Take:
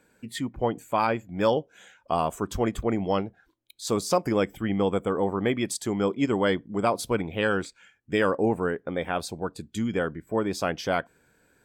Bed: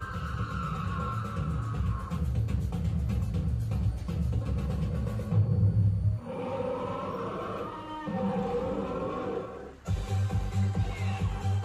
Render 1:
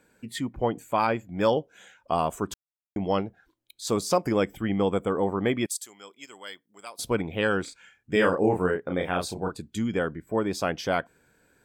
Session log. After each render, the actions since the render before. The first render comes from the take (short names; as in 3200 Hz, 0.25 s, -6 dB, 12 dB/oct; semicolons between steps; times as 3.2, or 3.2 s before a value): 2.54–2.96 mute; 5.66–6.99 differentiator; 7.64–9.58 doubler 33 ms -3.5 dB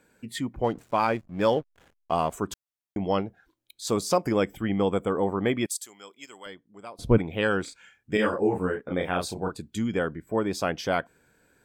0.64–2.34 backlash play -41 dBFS; 6.46–7.18 tilt -4 dB/oct; 8.17–8.91 ensemble effect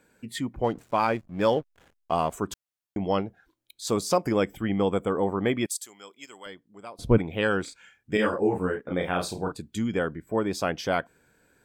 8.8–9.52 flutter echo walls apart 8.7 m, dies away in 0.22 s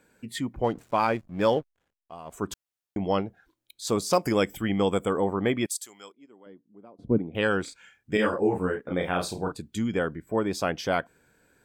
1.57–2.46 dip -17.5 dB, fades 0.21 s; 4.13–5.21 high shelf 3300 Hz +10 dB; 6.12–7.35 band-pass 260 Hz, Q 1.2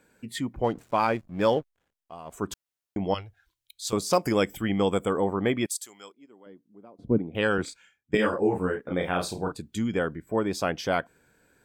3.14–3.93 EQ curve 100 Hz 0 dB, 190 Hz -24 dB, 3100 Hz +1 dB; 7.58–8.15 three-band expander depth 100%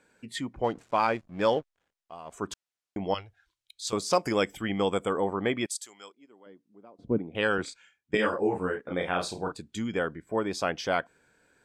LPF 8300 Hz 12 dB/oct; low shelf 330 Hz -6.5 dB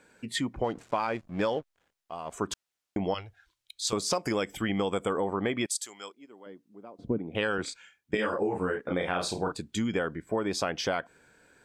in parallel at -2.5 dB: limiter -20.5 dBFS, peak gain reduction 9 dB; on the sum: compressor 6:1, threshold -25 dBFS, peak gain reduction 9 dB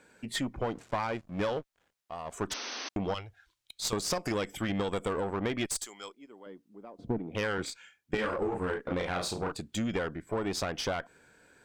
one diode to ground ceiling -29.5 dBFS; 2.5–2.89 painted sound noise 220–6300 Hz -39 dBFS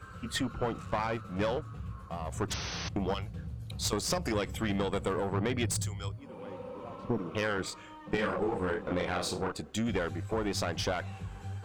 add bed -11 dB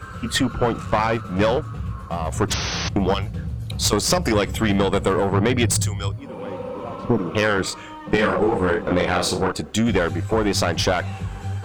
gain +12 dB